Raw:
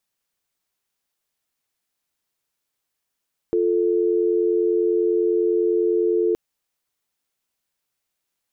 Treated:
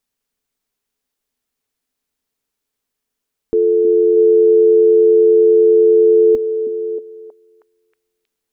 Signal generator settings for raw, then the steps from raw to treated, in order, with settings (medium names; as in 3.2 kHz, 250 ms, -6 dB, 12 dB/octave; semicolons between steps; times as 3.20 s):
call progress tone dial tone, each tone -19.5 dBFS 2.82 s
bass shelf 61 Hz +11 dB; small resonant body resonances 250/430 Hz, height 10 dB, ringing for 85 ms; on a send: repeats whose band climbs or falls 317 ms, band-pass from 280 Hz, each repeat 0.7 oct, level -6 dB